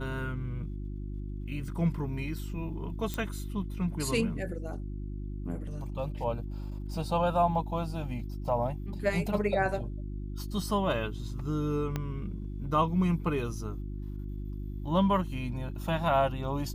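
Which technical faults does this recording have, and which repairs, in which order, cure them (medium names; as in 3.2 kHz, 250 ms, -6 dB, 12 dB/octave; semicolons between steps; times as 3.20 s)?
hum 50 Hz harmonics 7 -37 dBFS
3.14 s: pop -18 dBFS
11.96 s: pop -18 dBFS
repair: de-click; de-hum 50 Hz, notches 7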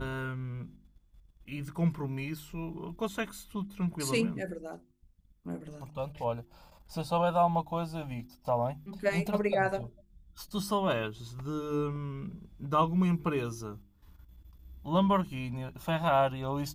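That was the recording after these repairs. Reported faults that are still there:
11.96 s: pop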